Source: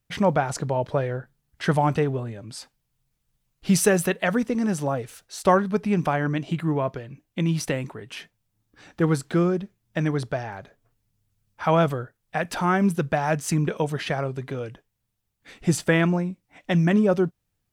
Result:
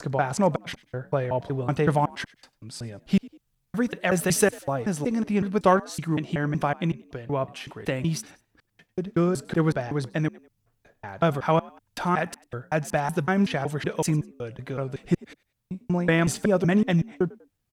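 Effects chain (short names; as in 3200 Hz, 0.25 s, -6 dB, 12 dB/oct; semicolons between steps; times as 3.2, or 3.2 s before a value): slices in reverse order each 0.187 s, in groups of 4; frequency-shifting echo 97 ms, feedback 36%, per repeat +58 Hz, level -22.5 dB; added harmonics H 3 -26 dB, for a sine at -6 dBFS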